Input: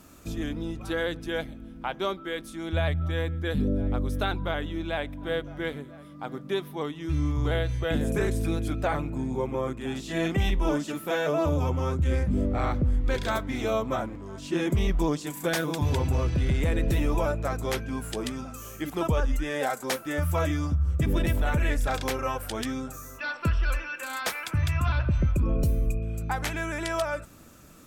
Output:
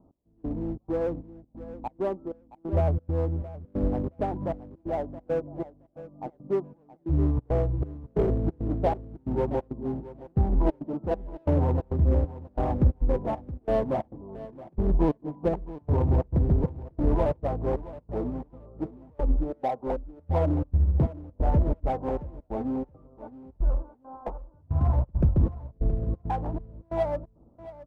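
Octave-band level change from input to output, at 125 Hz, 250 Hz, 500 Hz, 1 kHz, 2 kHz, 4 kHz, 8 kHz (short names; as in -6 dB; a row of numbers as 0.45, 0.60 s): +0.5 dB, -0.5 dB, +0.5 dB, -1.5 dB, -18.0 dB, under -20 dB, under -25 dB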